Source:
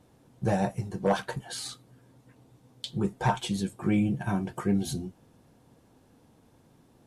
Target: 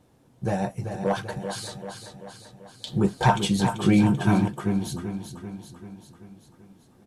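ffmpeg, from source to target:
-filter_complex "[0:a]aecho=1:1:388|776|1164|1552|1940|2328|2716:0.398|0.223|0.125|0.0699|0.0392|0.0219|0.0123,asettb=1/sr,asplit=3[a][b][c];[a]atrim=end=2.874[d];[b]atrim=start=2.87:end=4.48,asetpts=PTS-STARTPTS,afade=t=in:d=0.004:c=qsin,afade=t=out:st=1.606:d=0.004:c=qsin,acontrast=68[e];[c]atrim=start=4.476[f];[d][e]acrossfade=d=0.004:c1=hsin:c2=qsin[g];[g][f]acrossfade=d=0.004:c1=qsin:c2=hsin"

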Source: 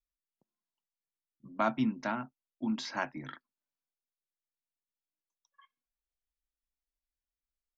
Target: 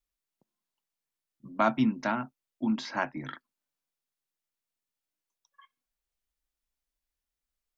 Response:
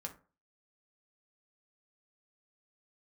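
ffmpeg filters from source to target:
-filter_complex "[0:a]asettb=1/sr,asplit=3[a][b][c];[a]atrim=end=2.734[d];[b]atrim=start=2.73:end=3.19,asetpts=PTS-STARTPTS,afade=t=in:d=0.004:c=qsin,afade=t=out:st=0.456:d=0.004:c=qsin,highshelf=f=4k:g=-8[e];[c]atrim=start=3.186[f];[d][e]acrossfade=d=0.004:c1=hsin:c2=qsin[g];[g][f]acrossfade=d=0.004:c1=qsin:c2=hsin,volume=4.5dB"

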